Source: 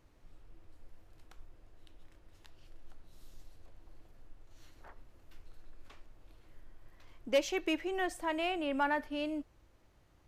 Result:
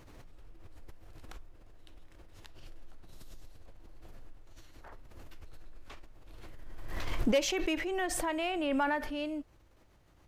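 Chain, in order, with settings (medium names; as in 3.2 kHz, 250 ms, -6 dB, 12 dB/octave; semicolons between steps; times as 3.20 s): swell ahead of each attack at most 23 dB/s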